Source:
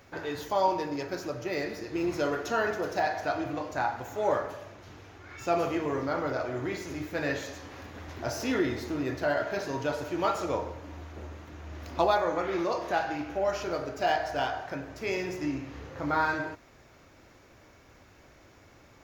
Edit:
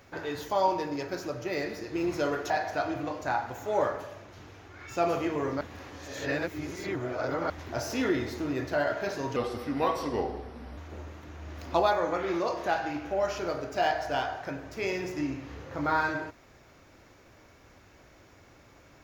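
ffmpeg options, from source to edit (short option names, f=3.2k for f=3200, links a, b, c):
-filter_complex "[0:a]asplit=6[a][b][c][d][e][f];[a]atrim=end=2.502[g];[b]atrim=start=2.998:end=6.112[h];[c]atrim=start=6.108:end=8.002,asetpts=PTS-STARTPTS,areverse[i];[d]atrim=start=7.998:end=9.864[j];[e]atrim=start=9.86:end=11.02,asetpts=PTS-STARTPTS,asetrate=36162,aresample=44100,atrim=end_sample=62385,asetpts=PTS-STARTPTS[k];[f]atrim=start=11.016[l];[g][h]acrossfade=d=0.004:c1=hsin:c2=hsin[m];[m][i]acrossfade=d=0.004:c1=hsin:c2=hsin[n];[n][j]acrossfade=d=0.004:c1=hsin:c2=hsin[o];[o][k]acrossfade=d=0.004:c1=hsin:c2=hsin[p];[p][l]acrossfade=d=0.004:c1=hsin:c2=hsin"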